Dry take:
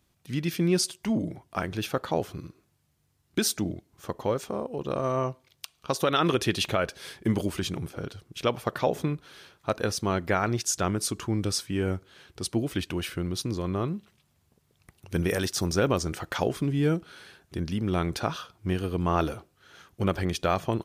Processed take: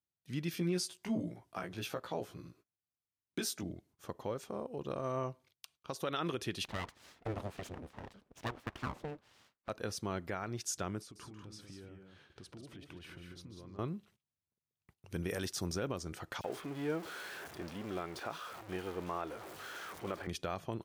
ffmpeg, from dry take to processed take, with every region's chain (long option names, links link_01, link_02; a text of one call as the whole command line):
ffmpeg -i in.wav -filter_complex "[0:a]asettb=1/sr,asplit=3[link_01][link_02][link_03];[link_01]atrim=end=0.554[link_04];[link_02]atrim=start=0.55:end=3.63,asetpts=PTS-STARTPTS,afade=type=in:duration=0.004:curve=qsin,afade=type=out:start_time=3.076:duration=0.004:curve=qsin,highpass=50,bass=frequency=250:gain=-3,treble=frequency=4000:gain=0,asplit=2[link_05][link_06];[link_06]adelay=17,volume=-3dB[link_07];[link_05][link_07]amix=inputs=2:normalize=0,atrim=end_sample=135828[link_08];[link_03]atrim=start=3.626[link_09];[link_04][link_08]acrossfade=duration=0.004:curve1=hsin:curve2=qsin[link_10];[link_10][link_09]acrossfade=duration=0.004:curve1=qsin:curve2=hsin,asettb=1/sr,asplit=3[link_11][link_12][link_13];[link_11]atrim=end=6.654[link_14];[link_12]atrim=start=6.65:end=9.69,asetpts=PTS-STARTPTS,afade=type=in:duration=0.004:curve=qsin,afade=type=out:start_time=3.036:duration=0.004:curve=qsin,lowpass=frequency=2000:poles=1,aeval=exprs='abs(val(0))':channel_layout=same[link_15];[link_13]atrim=start=9.686[link_16];[link_14][link_15]acrossfade=duration=0.004:curve1=hsin:curve2=qsin[link_17];[link_17][link_16]acrossfade=duration=0.004:curve1=qsin:curve2=hsin,asettb=1/sr,asplit=3[link_18][link_19][link_20];[link_18]atrim=end=11.014[link_21];[link_19]atrim=start=11.01:end=13.79,asetpts=PTS-STARTPTS,afade=type=in:duration=0.004:curve=qsin,afade=type=out:start_time=2.776:duration=0.004:curve=qsin,lowpass=frequency=3000:poles=1,acompressor=threshold=-39dB:ratio=12:attack=3.2:release=140:knee=1:detection=peak,aecho=1:1:144|191:0.316|0.501,atrim=end_sample=122598[link_22];[link_20]atrim=start=13.786[link_23];[link_21][link_22]acrossfade=duration=0.004:curve1=hsin:curve2=qsin[link_24];[link_24][link_23]acrossfade=duration=0.004:curve1=qsin:curve2=hsin,asettb=1/sr,asplit=3[link_25][link_26][link_27];[link_25]atrim=end=16.414[link_28];[link_26]atrim=start=16.41:end=20.27,asetpts=PTS-STARTPTS,afade=type=in:duration=0.004:curve=qsin,afade=type=out:start_time=3.856:duration=0.004:curve=qsin,aeval=exprs='val(0)+0.5*0.0316*sgn(val(0))':channel_layout=same,bass=frequency=250:gain=-14,treble=frequency=4000:gain=-7,acrossover=split=3100[link_29][link_30];[link_29]adelay=30[link_31];[link_31][link_30]amix=inputs=2:normalize=0,atrim=end_sample=170226[link_32];[link_27]atrim=start=20.266[link_33];[link_28][link_32]acrossfade=duration=0.004:curve1=hsin:curve2=qsin[link_34];[link_34][link_33]acrossfade=duration=0.004:curve1=qsin:curve2=hsin,agate=range=-21dB:threshold=-54dB:ratio=16:detection=peak,highpass=58,alimiter=limit=-17dB:level=0:latency=1:release=357,volume=-8.5dB" out.wav